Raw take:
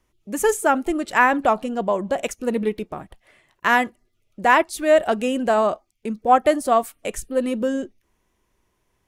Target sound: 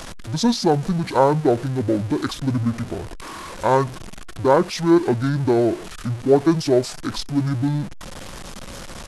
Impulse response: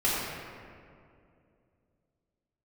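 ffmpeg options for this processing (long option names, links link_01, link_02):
-af "aeval=exprs='val(0)+0.5*0.0398*sgn(val(0))':channel_layout=same,asetrate=24046,aresample=44100,atempo=1.83401"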